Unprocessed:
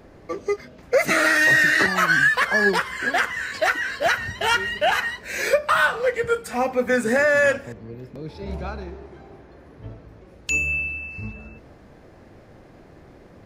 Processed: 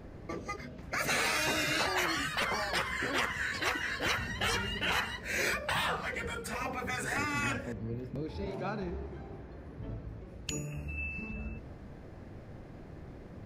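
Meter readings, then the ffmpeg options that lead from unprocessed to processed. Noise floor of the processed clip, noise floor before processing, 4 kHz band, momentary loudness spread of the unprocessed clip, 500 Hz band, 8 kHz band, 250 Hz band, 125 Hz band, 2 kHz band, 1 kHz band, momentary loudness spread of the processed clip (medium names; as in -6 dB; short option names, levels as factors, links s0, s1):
-48 dBFS, -48 dBFS, -5.5 dB, 18 LU, -16.0 dB, -6.0 dB, -8.5 dB, -3.5 dB, -13.5 dB, -10.5 dB, 19 LU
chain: -af "bass=f=250:g=7,treble=f=4000:g=-2,afftfilt=real='re*lt(hypot(re,im),0.282)':imag='im*lt(hypot(re,im),0.282)':win_size=1024:overlap=0.75,volume=0.631"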